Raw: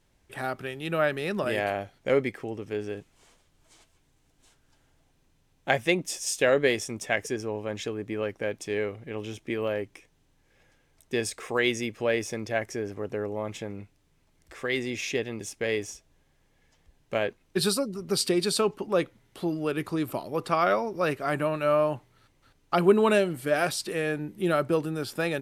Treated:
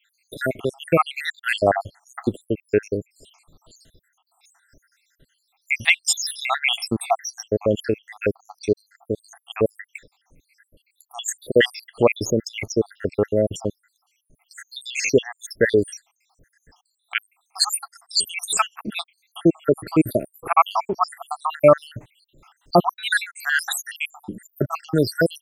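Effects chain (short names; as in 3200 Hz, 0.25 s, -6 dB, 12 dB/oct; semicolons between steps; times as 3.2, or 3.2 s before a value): random spectral dropouts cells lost 83%; 5.98–6.79 dynamic EQ 6900 Hz, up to +7 dB, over -53 dBFS, Q 2.3; maximiser +15.5 dB; gain -1 dB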